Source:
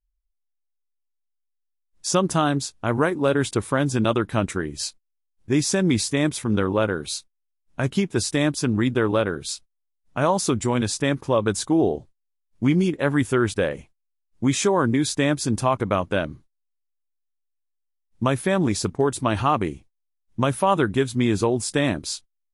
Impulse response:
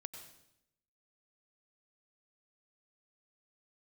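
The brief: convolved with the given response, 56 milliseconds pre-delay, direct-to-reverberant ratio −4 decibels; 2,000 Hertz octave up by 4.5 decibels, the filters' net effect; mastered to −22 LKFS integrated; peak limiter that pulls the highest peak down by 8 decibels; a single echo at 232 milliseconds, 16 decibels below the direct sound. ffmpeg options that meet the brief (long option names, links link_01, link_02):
-filter_complex "[0:a]equalizer=frequency=2000:width_type=o:gain=6,alimiter=limit=-13.5dB:level=0:latency=1,aecho=1:1:232:0.158,asplit=2[link_01][link_02];[1:a]atrim=start_sample=2205,adelay=56[link_03];[link_02][link_03]afir=irnorm=-1:irlink=0,volume=8dB[link_04];[link_01][link_04]amix=inputs=2:normalize=0,volume=-2.5dB"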